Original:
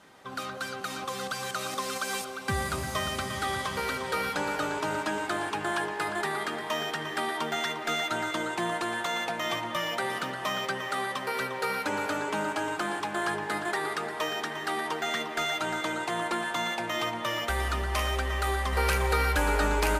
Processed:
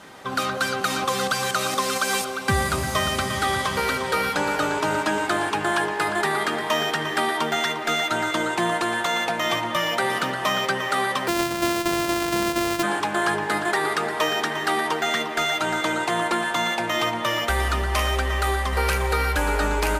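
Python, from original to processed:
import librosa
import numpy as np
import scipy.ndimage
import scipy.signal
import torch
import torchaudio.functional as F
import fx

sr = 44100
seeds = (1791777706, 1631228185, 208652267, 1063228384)

y = fx.sample_sort(x, sr, block=128, at=(11.27, 12.82), fade=0.02)
y = fx.rider(y, sr, range_db=4, speed_s=0.5)
y = F.gain(torch.from_numpy(y), 7.0).numpy()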